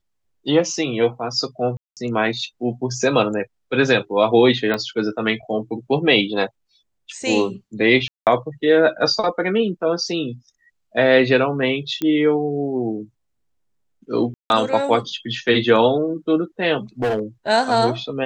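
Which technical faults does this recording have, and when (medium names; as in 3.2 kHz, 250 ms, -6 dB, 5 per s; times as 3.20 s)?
1.77–1.97 s: dropout 198 ms
4.74 s: pop -10 dBFS
8.08–8.27 s: dropout 188 ms
12.02 s: pop -11 dBFS
14.34–14.50 s: dropout 161 ms
17.02–17.21 s: clipped -17 dBFS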